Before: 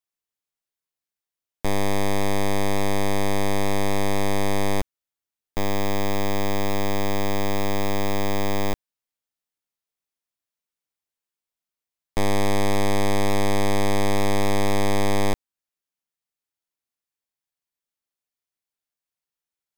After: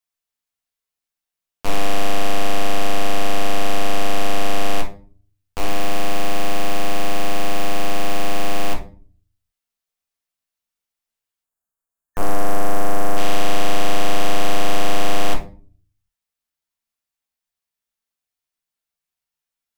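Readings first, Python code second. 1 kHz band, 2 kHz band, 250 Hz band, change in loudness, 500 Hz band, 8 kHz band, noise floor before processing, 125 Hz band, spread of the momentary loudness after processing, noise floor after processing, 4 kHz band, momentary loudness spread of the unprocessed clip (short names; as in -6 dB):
+3.0 dB, +2.5 dB, -2.5 dB, +0.5 dB, 0.0 dB, +2.0 dB, under -85 dBFS, -3.5 dB, 6 LU, under -85 dBFS, +4.0 dB, 5 LU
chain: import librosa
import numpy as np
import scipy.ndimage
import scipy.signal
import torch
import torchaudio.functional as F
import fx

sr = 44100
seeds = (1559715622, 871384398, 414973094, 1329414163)

y = fx.octave_divider(x, sr, octaves=2, level_db=2.0)
y = fx.spec_box(y, sr, start_s=11.44, length_s=1.73, low_hz=1800.0, high_hz=6400.0, gain_db=-14)
y = fx.low_shelf(y, sr, hz=440.0, db=-8.0)
y = fx.room_shoebox(y, sr, seeds[0], volume_m3=290.0, walls='furnished', distance_m=1.6)
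y = fx.doppler_dist(y, sr, depth_ms=0.64)
y = y * 10.0 ** (1.5 / 20.0)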